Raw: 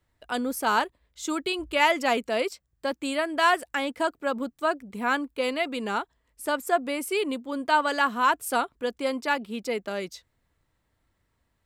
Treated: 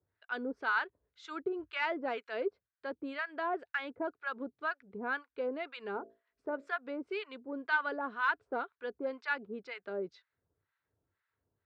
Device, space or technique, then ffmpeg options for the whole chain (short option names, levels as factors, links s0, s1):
guitar amplifier with harmonic tremolo: -filter_complex "[0:a]asettb=1/sr,asplit=3[s0][s1][s2];[s0]atrim=end=5.944[s3];[s1]atrim=start=5.94:end=6.76,asetpts=PTS-STARTPTS,afade=t=in:d=0.004:c=qsin,afade=t=out:st=0.816:d=0.004:c=qsin,bandreject=f=56.29:t=h:w=4,bandreject=f=112.58:t=h:w=4,bandreject=f=168.87:t=h:w=4,bandreject=f=225.16:t=h:w=4,bandreject=f=281.45:t=h:w=4,bandreject=f=337.74:t=h:w=4,bandreject=f=394.03:t=h:w=4,bandreject=f=450.32:t=h:w=4,bandreject=f=506.61:t=h:w=4,bandreject=f=562.9:t=h:w=4,bandreject=f=619.19:t=h:w=4,bandreject=f=675.48:t=h:w=4[s4];[s2]atrim=start=6.756[s5];[s3][s4]acrossfade=d=0.004:c1=hsin:c2=qsin[s6];[s6][s5]acrossfade=d=0.004:c1=qsin:c2=hsin,acrossover=split=920[s7][s8];[s7]aeval=exprs='val(0)*(1-1/2+1/2*cos(2*PI*2*n/s))':c=same[s9];[s8]aeval=exprs='val(0)*(1-1/2-1/2*cos(2*PI*2*n/s))':c=same[s10];[s9][s10]amix=inputs=2:normalize=0,asoftclip=type=tanh:threshold=0.119,highpass=93,equalizer=f=96:t=q:w=4:g=7,equalizer=f=220:t=q:w=4:g=-4,equalizer=f=420:t=q:w=4:g=9,equalizer=f=1500:t=q:w=4:g=9,equalizer=f=3100:t=q:w=4:g=-4,lowpass=f=4000:w=0.5412,lowpass=f=4000:w=1.3066,volume=0.447"